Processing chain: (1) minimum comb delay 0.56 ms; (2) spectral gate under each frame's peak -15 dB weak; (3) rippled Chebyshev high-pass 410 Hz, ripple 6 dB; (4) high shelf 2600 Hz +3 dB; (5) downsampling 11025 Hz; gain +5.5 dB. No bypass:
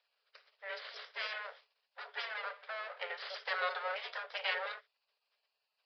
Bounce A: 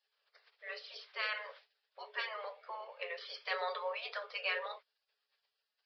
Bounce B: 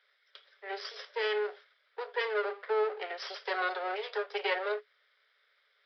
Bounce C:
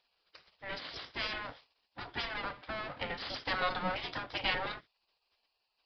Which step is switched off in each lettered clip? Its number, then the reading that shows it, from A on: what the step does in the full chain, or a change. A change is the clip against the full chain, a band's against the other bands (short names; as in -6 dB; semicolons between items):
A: 1, 500 Hz band +2.0 dB; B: 2, 500 Hz band +10.0 dB; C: 3, 2 kHz band -2.5 dB